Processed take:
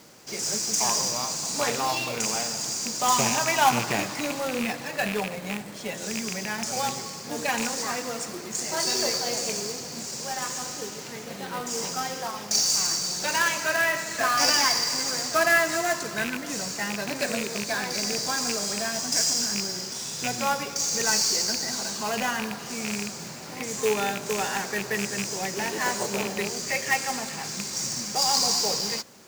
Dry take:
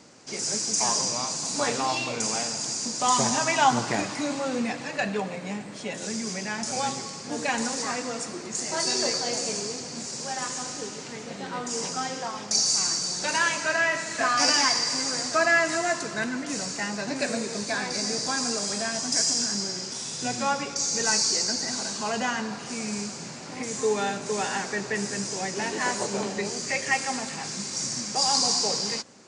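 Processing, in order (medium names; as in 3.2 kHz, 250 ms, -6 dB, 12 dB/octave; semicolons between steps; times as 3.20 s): rattle on loud lows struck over -33 dBFS, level -19 dBFS; peaking EQ 270 Hz -5 dB 0.28 oct; companded quantiser 4-bit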